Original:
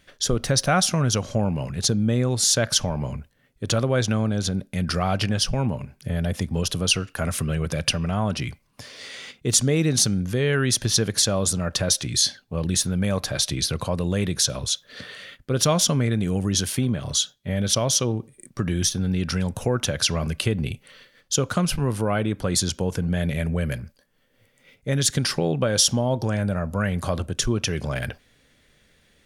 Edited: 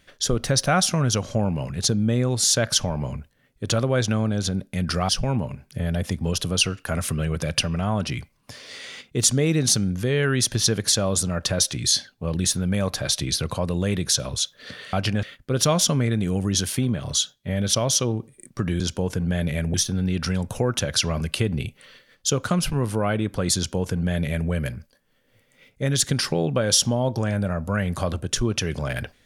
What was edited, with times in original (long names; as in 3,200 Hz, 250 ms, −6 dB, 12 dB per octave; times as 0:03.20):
0:05.09–0:05.39: move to 0:15.23
0:22.62–0:23.56: duplicate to 0:18.80